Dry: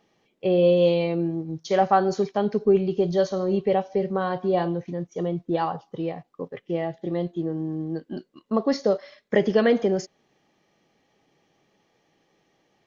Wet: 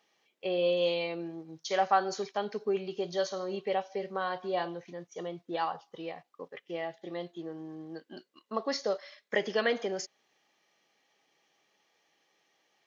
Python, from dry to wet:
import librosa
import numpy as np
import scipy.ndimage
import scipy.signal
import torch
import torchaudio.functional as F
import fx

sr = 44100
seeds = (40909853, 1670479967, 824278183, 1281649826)

y = fx.highpass(x, sr, hz=1400.0, slope=6)